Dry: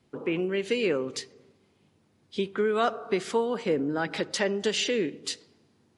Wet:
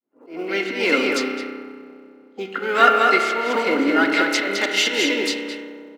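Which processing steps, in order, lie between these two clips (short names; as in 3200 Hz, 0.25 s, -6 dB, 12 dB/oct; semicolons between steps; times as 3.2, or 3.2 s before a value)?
opening faded in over 0.58 s; on a send: echo 0.213 s -3.5 dB; on the sum: auto swell 0.13 s; low shelf 250 Hz -9.5 dB; spring tank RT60 2.7 s, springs 31 ms, chirp 65 ms, DRR 4 dB; low-pass opened by the level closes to 790 Hz, open at -22.5 dBFS; weighting filter A; in parallel at -11.5 dB: short-mantissa float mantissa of 2-bit; on the sum: small resonant body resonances 270/1400/2100 Hz, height 15 dB, ringing for 50 ms; harmoniser +4 st -14 dB, +12 st -16 dB; gain +5 dB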